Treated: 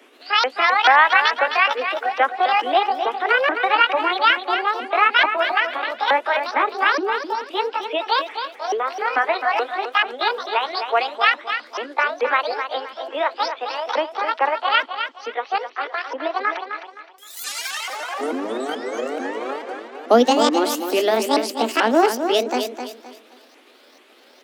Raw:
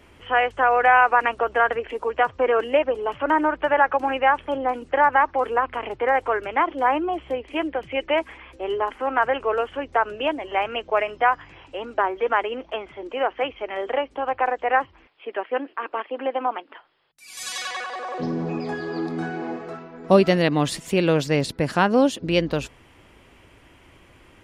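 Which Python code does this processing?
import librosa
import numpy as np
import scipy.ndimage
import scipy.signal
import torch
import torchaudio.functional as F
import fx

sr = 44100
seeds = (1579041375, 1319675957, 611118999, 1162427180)

p1 = fx.pitch_ramps(x, sr, semitones=11.5, every_ms=436)
p2 = scipy.signal.sosfilt(scipy.signal.butter(16, 230.0, 'highpass', fs=sr, output='sos'), p1)
p3 = fx.notch(p2, sr, hz=1000.0, q=21.0)
p4 = p3 + fx.echo_feedback(p3, sr, ms=260, feedback_pct=30, wet_db=-8.0, dry=0)
y = p4 * 10.0 ** (3.0 / 20.0)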